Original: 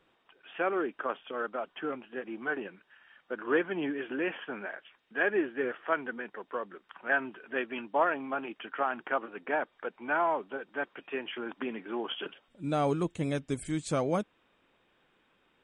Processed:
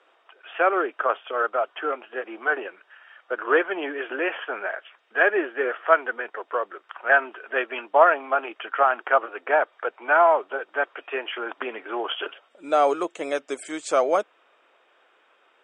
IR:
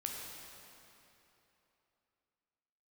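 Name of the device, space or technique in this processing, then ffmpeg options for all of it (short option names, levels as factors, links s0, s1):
phone speaker on a table: -af "highpass=f=390:w=0.5412,highpass=f=390:w=1.3066,equalizer=f=660:t=q:w=4:g=5,equalizer=f=1300:t=q:w=4:g=5,equalizer=f=4000:t=q:w=4:g=-5,lowpass=f=8300:w=0.5412,lowpass=f=8300:w=1.3066,volume=2.51"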